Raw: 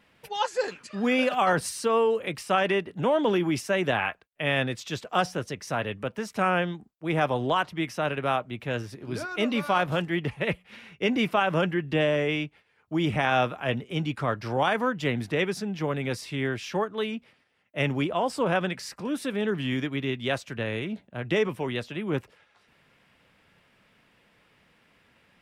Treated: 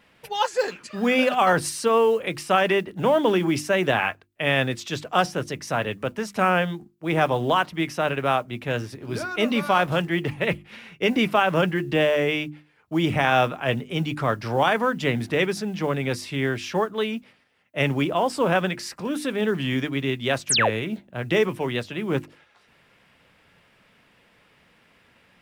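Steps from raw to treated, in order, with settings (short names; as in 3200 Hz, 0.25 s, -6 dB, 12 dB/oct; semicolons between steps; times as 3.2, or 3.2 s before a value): modulation noise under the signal 34 dB; notches 50/100/150/200/250/300/350 Hz; painted sound fall, 20.49–20.7, 380–12000 Hz -24 dBFS; gain +4 dB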